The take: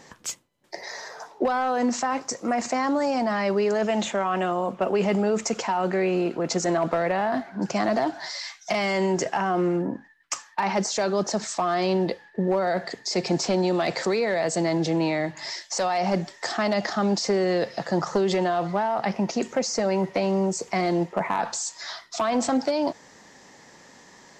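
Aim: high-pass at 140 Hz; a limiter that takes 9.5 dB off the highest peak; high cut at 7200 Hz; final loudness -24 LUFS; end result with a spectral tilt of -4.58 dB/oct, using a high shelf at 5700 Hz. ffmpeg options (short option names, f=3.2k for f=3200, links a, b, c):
-af "highpass=140,lowpass=7.2k,highshelf=f=5.7k:g=-6.5,volume=6.5dB,alimiter=limit=-15.5dB:level=0:latency=1"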